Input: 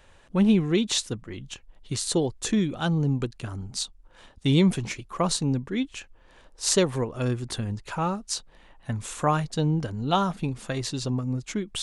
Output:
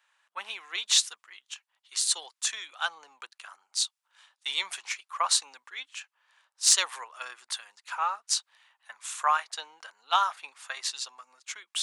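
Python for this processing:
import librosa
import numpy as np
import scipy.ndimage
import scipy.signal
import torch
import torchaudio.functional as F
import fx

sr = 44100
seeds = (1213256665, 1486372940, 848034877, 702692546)

p1 = scipy.signal.sosfilt(scipy.signal.butter(4, 1000.0, 'highpass', fs=sr, output='sos'), x)
p2 = np.clip(p1, -10.0 ** (-19.5 / 20.0), 10.0 ** (-19.5 / 20.0))
p3 = p1 + (p2 * librosa.db_to_amplitude(-9.5))
p4 = fx.band_widen(p3, sr, depth_pct=40)
y = p4 * librosa.db_to_amplitude(-1.0)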